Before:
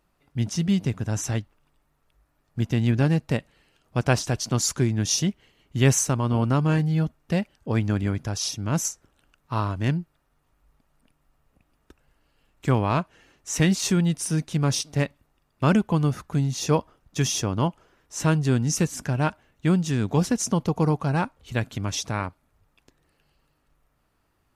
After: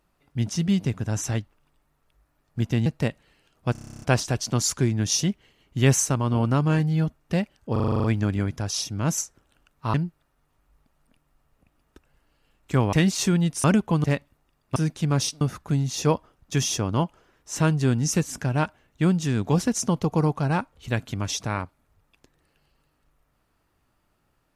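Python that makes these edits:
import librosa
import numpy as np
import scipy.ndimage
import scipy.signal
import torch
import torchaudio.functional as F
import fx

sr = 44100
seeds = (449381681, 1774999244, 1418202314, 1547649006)

y = fx.edit(x, sr, fx.cut(start_s=2.86, length_s=0.29),
    fx.stutter(start_s=4.01, slice_s=0.03, count=11),
    fx.stutter(start_s=7.71, slice_s=0.04, count=9),
    fx.cut(start_s=9.61, length_s=0.27),
    fx.cut(start_s=12.87, length_s=0.7),
    fx.swap(start_s=14.28, length_s=0.65, other_s=15.65, other_length_s=0.4), tone=tone)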